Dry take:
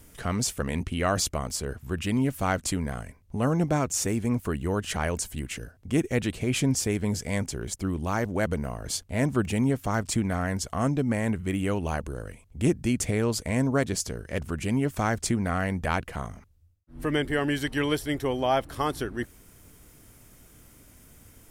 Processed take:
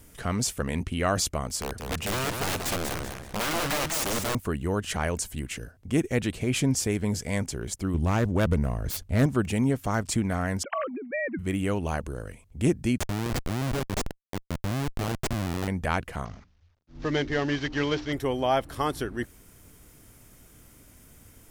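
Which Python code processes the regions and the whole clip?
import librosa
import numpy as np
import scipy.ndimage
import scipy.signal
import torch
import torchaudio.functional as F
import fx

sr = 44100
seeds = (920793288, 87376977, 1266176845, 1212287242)

y = fx.chain(x, sr, fx.overflow_wrap(gain_db=23.5),
    fx.echo_warbled(ms=192, feedback_pct=36, rate_hz=2.8, cents=185, wet_db=-5), at=(1.59, 4.35))
y = fx.chain(y, sr, fx.self_delay(depth_ms=0.16),
    fx.low_shelf(hz=170.0, db=10.0), at=(7.94, 9.26))
y = fx.chain(y, sr, fx.sine_speech(),
    fx.over_compress(threshold_db=-33.0, ratio=-1.0), at=(10.63, 11.39))
y = fx.chain(y, sr, fx.highpass(hz=50.0, slope=24),
    fx.schmitt(flips_db=-24.5), at=(12.98, 15.68))
y = fx.chain(y, sr, fx.cvsd(bps=32000),
    fx.hum_notches(base_hz=60, count=5), at=(16.25, 18.13))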